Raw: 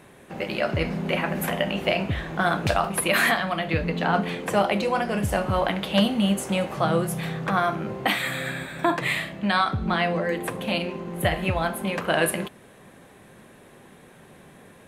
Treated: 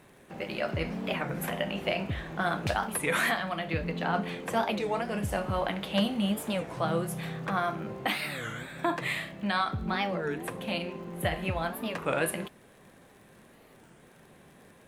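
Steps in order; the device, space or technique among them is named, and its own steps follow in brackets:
warped LP (wow of a warped record 33 1/3 rpm, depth 250 cents; surface crackle 52 per second −41 dBFS; pink noise bed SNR 41 dB)
level −6.5 dB

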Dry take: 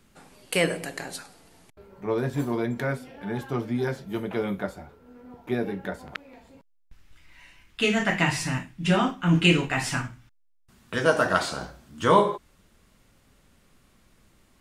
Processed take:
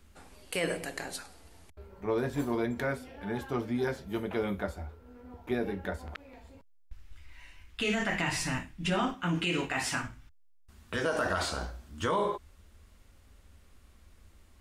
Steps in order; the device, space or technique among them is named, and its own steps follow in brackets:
car stereo with a boomy subwoofer (low shelf with overshoot 100 Hz +7 dB, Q 3; brickwall limiter −17.5 dBFS, peak gain reduction 11 dB)
0:09.14–0:10.03: high-pass filter 150 Hz 6 dB per octave
level −2.5 dB

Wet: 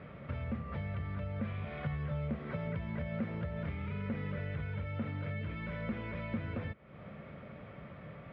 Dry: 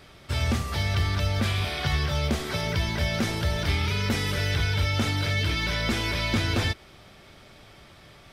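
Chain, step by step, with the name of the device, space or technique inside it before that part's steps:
bass amplifier (downward compressor 4 to 1, threshold −40 dBFS, peak gain reduction 16.5 dB; loudspeaker in its box 66–2,100 Hz, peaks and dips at 150 Hz +7 dB, 210 Hz +7 dB, 360 Hz −6 dB, 520 Hz +7 dB, 820 Hz −6 dB, 1,600 Hz −4 dB)
level +1.5 dB

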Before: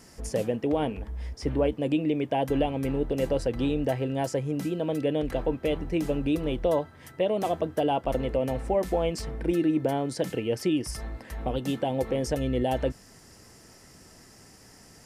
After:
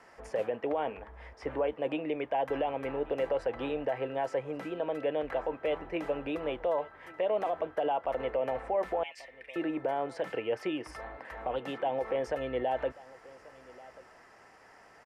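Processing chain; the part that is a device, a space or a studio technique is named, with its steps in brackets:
0:09.03–0:09.56: Chebyshev high-pass filter 1,800 Hz, order 6
DJ mixer with the lows and highs turned down (three-way crossover with the lows and the highs turned down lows −21 dB, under 510 Hz, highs −21 dB, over 2,400 Hz; brickwall limiter −26.5 dBFS, peak gain reduction 7.5 dB)
high-shelf EQ 12,000 Hz −9 dB
single-tap delay 1,136 ms −21 dB
level +4.5 dB

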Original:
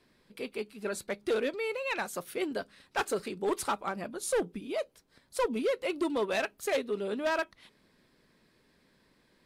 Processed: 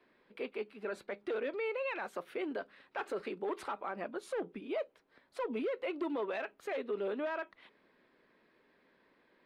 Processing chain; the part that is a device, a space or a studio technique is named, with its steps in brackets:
DJ mixer with the lows and highs turned down (three-way crossover with the lows and the highs turned down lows −16 dB, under 260 Hz, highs −23 dB, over 3,100 Hz; brickwall limiter −29.5 dBFS, peak gain reduction 10 dB)
level +1 dB

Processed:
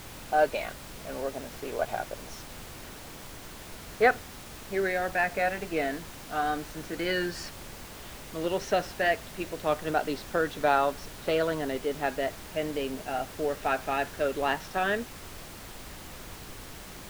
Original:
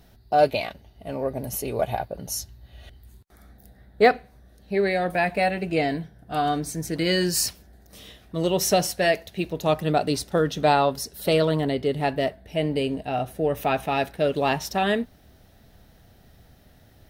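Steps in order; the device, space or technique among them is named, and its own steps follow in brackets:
horn gramophone (band-pass filter 260–3,200 Hz; parametric band 1,500 Hz +9 dB 0.48 octaves; tape wow and flutter; pink noise bed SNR 12 dB)
level −5.5 dB

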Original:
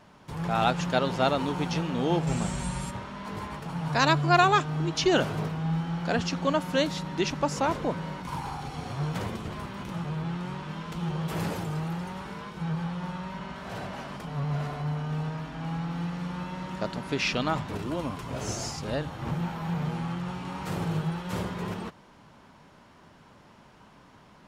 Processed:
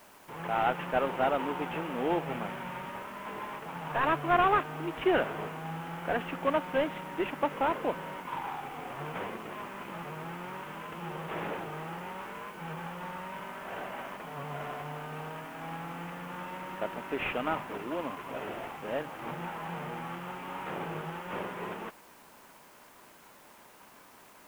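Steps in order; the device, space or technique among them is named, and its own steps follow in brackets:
army field radio (band-pass filter 330–3,100 Hz; variable-slope delta modulation 16 kbit/s; white noise bed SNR 26 dB)

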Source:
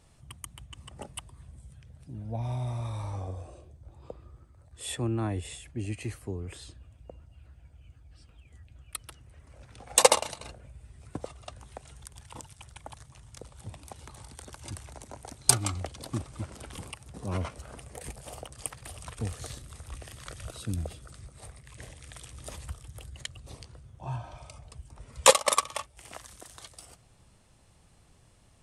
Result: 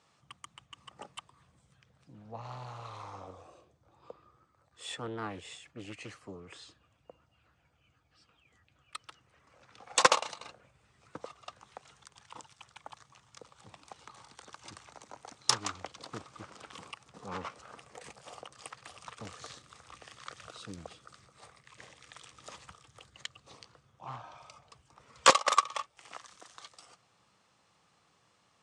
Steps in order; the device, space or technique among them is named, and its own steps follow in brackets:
full-range speaker at full volume (highs frequency-modulated by the lows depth 0.65 ms; loudspeaker in its box 250–7,100 Hz, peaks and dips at 250 Hz −6 dB, 370 Hz −6 dB, 620 Hz −5 dB, 1,200 Hz +6 dB)
level −2 dB

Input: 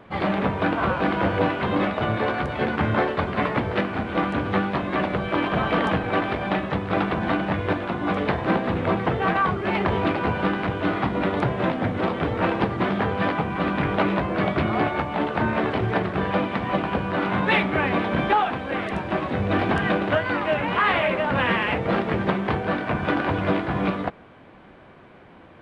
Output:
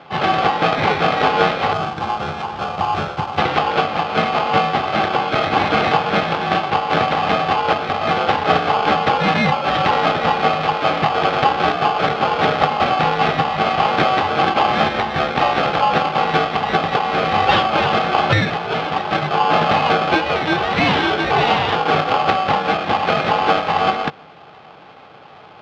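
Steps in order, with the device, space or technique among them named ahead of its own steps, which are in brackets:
ring modulator pedal into a guitar cabinet (ring modulator with a square carrier 950 Hz; loudspeaker in its box 92–4,000 Hz, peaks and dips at 98 Hz +4 dB, 150 Hz +8 dB, 450 Hz +5 dB, 820 Hz +9 dB, 1,800 Hz −4 dB)
0:01.73–0:03.38: octave-band graphic EQ 250/500/2,000/4,000 Hz −6/−8/−10/−6 dB
level +4 dB

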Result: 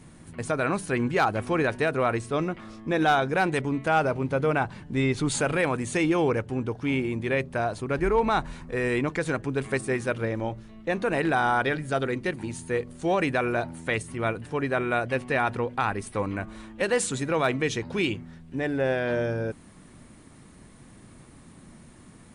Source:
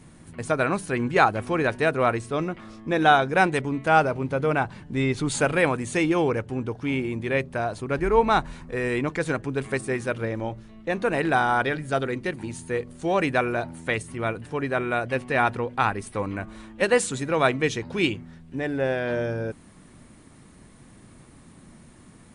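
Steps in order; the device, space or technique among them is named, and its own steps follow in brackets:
clipper into limiter (hard clipping −9.5 dBFS, distortion −28 dB; brickwall limiter −14 dBFS, peak gain reduction 4.5 dB)

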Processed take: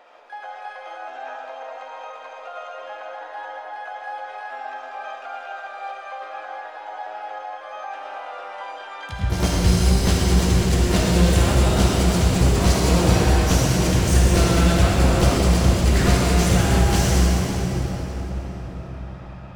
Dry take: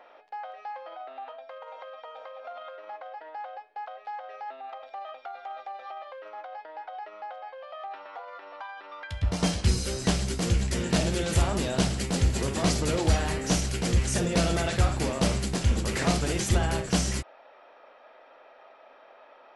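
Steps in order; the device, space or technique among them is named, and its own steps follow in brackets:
shimmer-style reverb (pitch-shifted copies added +12 semitones −10 dB; convolution reverb RT60 4.9 s, pre-delay 48 ms, DRR −3.5 dB)
level +1.5 dB

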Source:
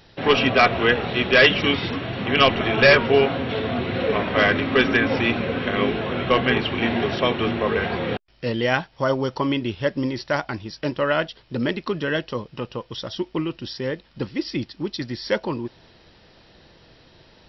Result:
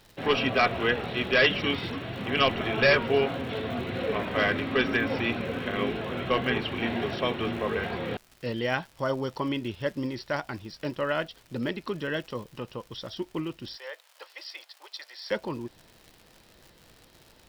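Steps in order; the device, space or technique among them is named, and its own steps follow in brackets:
vinyl LP (surface crackle 120 per second −33 dBFS; pink noise bed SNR 35 dB)
0:13.77–0:15.31: Butterworth high-pass 580 Hz 36 dB per octave
level −7 dB

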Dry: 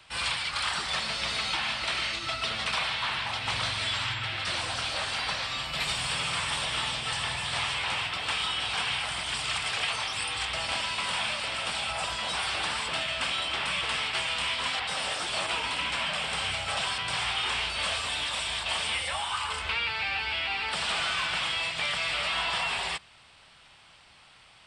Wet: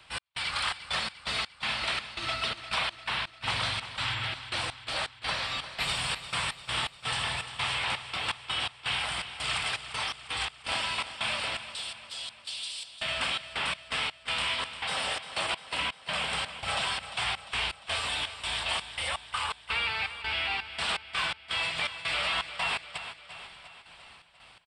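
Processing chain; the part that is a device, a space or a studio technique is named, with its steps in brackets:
0:11.74–0:12.96: inverse Chebyshev high-pass filter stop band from 1,300 Hz, stop band 50 dB
parametric band 6,300 Hz −5.5 dB 0.5 octaves
repeating echo 591 ms, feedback 55%, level −21 dB
trance gate with a delay (gate pattern "x.xx.x.x.x" 83 BPM −60 dB; repeating echo 349 ms, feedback 56%, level −12.5 dB)

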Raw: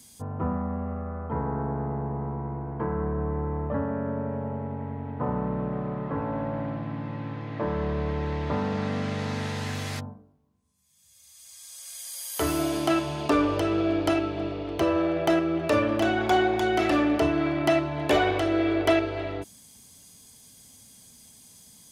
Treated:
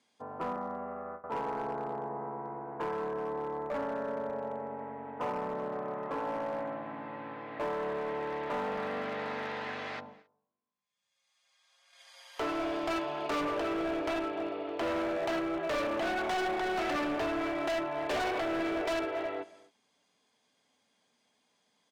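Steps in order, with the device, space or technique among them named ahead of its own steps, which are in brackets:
slap from a distant wall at 46 metres, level −21 dB
0:00.56–0:01.24: noise gate with hold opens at −24 dBFS
dynamic equaliser 8,500 Hz, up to −5 dB, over −51 dBFS, Q 1
walkie-talkie (band-pass filter 440–2,500 Hz; hard clipping −29.5 dBFS, distortion −6 dB; noise gate −56 dBFS, range −8 dB)

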